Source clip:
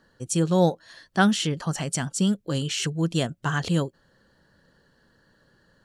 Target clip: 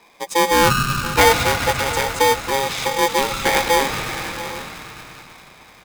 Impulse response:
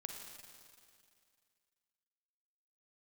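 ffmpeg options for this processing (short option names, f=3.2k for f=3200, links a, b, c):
-filter_complex "[0:a]asplit=2[a][b];[b]highpass=f=560:w=0.5412,highpass=f=560:w=1.3066[c];[1:a]atrim=start_sample=2205,asetrate=24255,aresample=44100[d];[c][d]afir=irnorm=-1:irlink=0,volume=4.5dB[e];[a][e]amix=inputs=2:normalize=0,deesser=0.8,aecho=1:1:682|801:0.168|0.126,acrossover=split=1900[f][g];[g]adynamicsmooth=sensitivity=6:basefreq=5.5k[h];[f][h]amix=inputs=2:normalize=0,aeval=exprs='val(0)*sgn(sin(2*PI*680*n/s))':c=same,volume=6.5dB"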